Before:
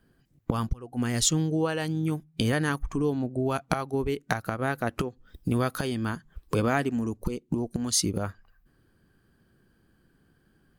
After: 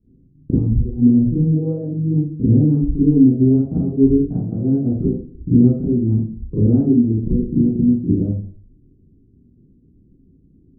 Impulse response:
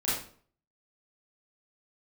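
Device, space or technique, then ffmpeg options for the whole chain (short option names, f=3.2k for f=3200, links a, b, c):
next room: -filter_complex "[0:a]asettb=1/sr,asplit=3[a][b][c];[a]atrim=end=3.044[d];[b]atrim=start=3.04:end=4.8,asetpts=PTS-STARTPTS,afade=t=in:d=0.004:c=qsin,afade=t=out:st=1.756:d=0.004:c=qsin,asplit=2[e][f];[f]adelay=22,volume=-8dB[g];[e][g]amix=inputs=2:normalize=0,atrim=end_sample=77616[h];[c]atrim=start=4.796[i];[d][h]acrossfade=d=0.004:c1=hsin:c2=qsin[j];[j][i]acrossfade=d=0.004:c1=qsin:c2=hsin,lowpass=f=340:w=0.5412,lowpass=f=340:w=1.3066[k];[1:a]atrim=start_sample=2205[l];[k][l]afir=irnorm=-1:irlink=0,volume=4.5dB"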